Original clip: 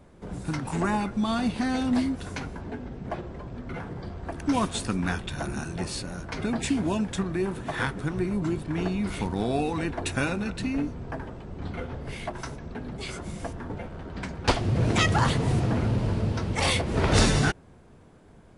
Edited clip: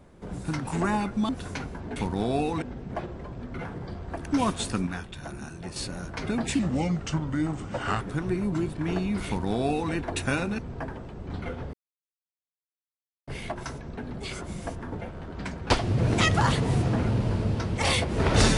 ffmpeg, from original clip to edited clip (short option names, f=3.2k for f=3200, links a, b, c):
-filter_complex "[0:a]asplit=10[a][b][c][d][e][f][g][h][i][j];[a]atrim=end=1.292[k];[b]atrim=start=2.098:end=2.772[l];[c]atrim=start=9.158:end=9.822[m];[d]atrim=start=2.768:end=5.022[n];[e]atrim=start=5.018:end=5.912,asetpts=PTS-STARTPTS,volume=-6.5dB[o];[f]atrim=start=5.908:end=6.744[p];[g]atrim=start=6.74:end=7.9,asetpts=PTS-STARTPTS,asetrate=36162,aresample=44100,atrim=end_sample=62385,asetpts=PTS-STARTPTS[q];[h]atrim=start=7.896:end=10.482[r];[i]atrim=start=10.898:end=12.05,asetpts=PTS-STARTPTS,afade=t=out:st=1.148:d=0.004:c=hsin,apad=pad_dur=1.54[s];[j]atrim=start=12.05,asetpts=PTS-STARTPTS,afade=t=in:d=0.004:c=hsin[t];[k][l]acrossfade=d=0.004:c1=hsin:c2=hsin[u];[u][m]acrossfade=d=0.004:c1=hsin:c2=hsin[v];[v][n]acrossfade=d=0.004:c1=hsin:c2=hsin[w];[w][o]acrossfade=d=0.004:c1=hsin:c2=hsin[x];[x][p]acrossfade=d=0.004:c1=hsin:c2=hsin[y];[y][q]acrossfade=d=0.004:c1=hsin:c2=hsin[z];[z][r]acrossfade=d=0.004:c1=hsin:c2=hsin[aa];[s][t]concat=n=2:v=0:a=1[ab];[aa][ab]acrossfade=d=0.004:c1=hsin:c2=hsin"